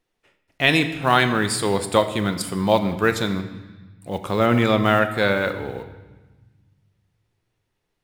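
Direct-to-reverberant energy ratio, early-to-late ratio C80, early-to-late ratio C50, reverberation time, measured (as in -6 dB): 8.0 dB, 12.5 dB, 11.0 dB, 1.2 s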